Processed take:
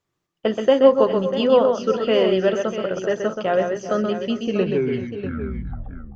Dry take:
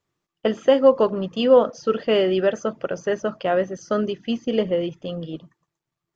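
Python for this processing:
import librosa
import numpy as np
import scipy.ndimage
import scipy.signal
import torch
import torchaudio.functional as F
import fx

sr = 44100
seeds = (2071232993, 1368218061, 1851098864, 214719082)

y = fx.tape_stop_end(x, sr, length_s=1.75)
y = fx.echo_multitap(y, sr, ms=(128, 386, 403, 643), db=(-5.5, -16.0, -18.0, -11.0))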